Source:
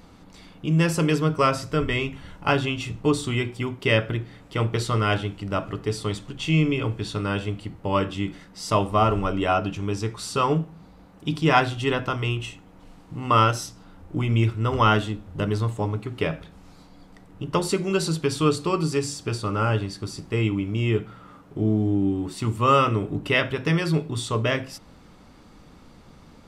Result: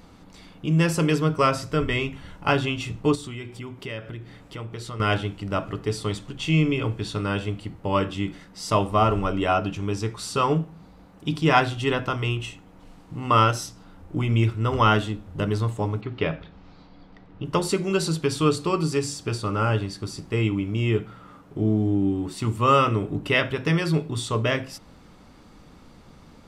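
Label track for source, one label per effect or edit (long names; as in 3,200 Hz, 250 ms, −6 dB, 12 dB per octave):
3.150000	5.000000	downward compressor 2.5 to 1, threshold −36 dBFS
16.010000	17.450000	low-pass filter 4,600 Hz 24 dB per octave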